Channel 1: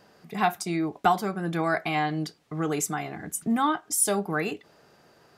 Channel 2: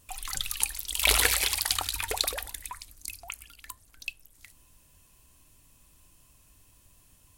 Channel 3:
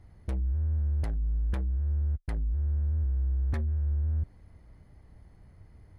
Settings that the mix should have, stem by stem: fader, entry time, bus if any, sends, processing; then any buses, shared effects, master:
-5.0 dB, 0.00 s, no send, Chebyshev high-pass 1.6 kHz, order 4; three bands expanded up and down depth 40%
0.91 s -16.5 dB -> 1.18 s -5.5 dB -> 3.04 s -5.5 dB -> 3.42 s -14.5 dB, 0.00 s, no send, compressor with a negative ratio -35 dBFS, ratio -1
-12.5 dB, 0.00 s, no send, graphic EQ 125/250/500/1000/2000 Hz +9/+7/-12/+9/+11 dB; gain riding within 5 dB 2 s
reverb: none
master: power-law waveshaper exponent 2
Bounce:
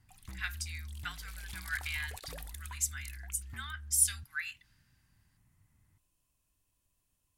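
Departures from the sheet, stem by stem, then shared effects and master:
stem 2 -16.5 dB -> -25.5 dB; stem 3 -12.5 dB -> -20.5 dB; master: missing power-law waveshaper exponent 2

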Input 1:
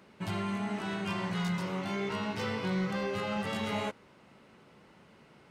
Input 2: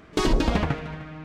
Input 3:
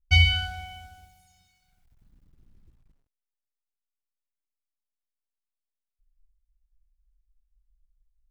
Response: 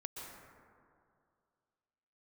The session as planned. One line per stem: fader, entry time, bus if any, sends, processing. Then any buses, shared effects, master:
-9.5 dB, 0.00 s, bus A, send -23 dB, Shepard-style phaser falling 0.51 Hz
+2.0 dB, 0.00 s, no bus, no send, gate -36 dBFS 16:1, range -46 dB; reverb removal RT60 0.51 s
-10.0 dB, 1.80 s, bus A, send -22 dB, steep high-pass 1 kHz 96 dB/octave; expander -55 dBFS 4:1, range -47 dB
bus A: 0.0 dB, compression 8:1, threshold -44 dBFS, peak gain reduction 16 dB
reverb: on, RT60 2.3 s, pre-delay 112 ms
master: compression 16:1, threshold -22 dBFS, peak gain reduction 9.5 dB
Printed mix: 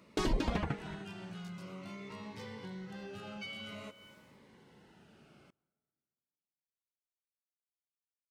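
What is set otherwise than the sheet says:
stem 1 -9.5 dB -> -2.0 dB; stem 2 +2.0 dB -> -9.5 dB; stem 3: entry 1.80 s -> 3.30 s

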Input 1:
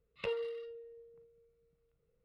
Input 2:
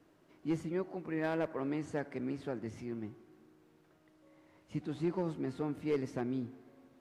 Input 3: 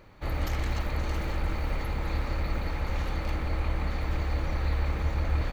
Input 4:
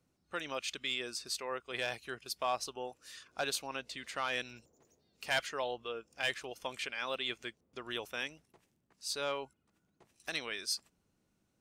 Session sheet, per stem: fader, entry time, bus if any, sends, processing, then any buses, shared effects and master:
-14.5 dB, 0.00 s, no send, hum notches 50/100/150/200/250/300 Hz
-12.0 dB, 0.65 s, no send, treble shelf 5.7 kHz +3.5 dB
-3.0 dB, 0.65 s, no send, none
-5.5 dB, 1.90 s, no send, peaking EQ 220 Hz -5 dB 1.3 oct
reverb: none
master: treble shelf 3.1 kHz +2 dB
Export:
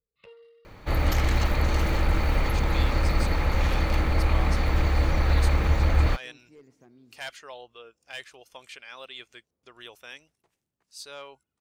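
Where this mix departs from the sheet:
stem 1: missing hum notches 50/100/150/200/250/300 Hz; stem 2 -12.0 dB -> -19.5 dB; stem 3 -3.0 dB -> +6.5 dB

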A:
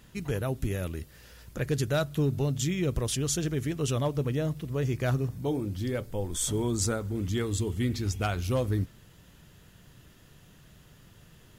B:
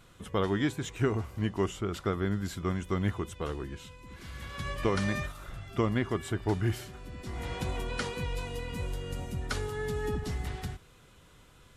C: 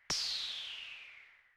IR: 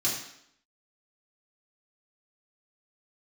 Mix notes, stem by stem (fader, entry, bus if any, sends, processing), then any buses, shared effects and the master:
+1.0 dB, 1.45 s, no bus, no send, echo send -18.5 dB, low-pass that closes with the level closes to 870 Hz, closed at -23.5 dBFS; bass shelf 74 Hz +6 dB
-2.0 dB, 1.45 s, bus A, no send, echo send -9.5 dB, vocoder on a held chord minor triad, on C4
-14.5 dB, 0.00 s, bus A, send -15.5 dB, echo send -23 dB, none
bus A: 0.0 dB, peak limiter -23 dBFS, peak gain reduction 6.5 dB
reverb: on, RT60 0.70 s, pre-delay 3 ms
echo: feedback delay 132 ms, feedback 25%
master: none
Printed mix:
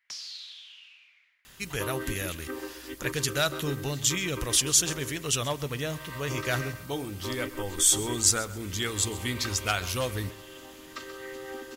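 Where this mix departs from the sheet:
stem A: missing low-pass that closes with the level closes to 870 Hz, closed at -23.5 dBFS; master: extra tilt shelf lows -9 dB, about 820 Hz

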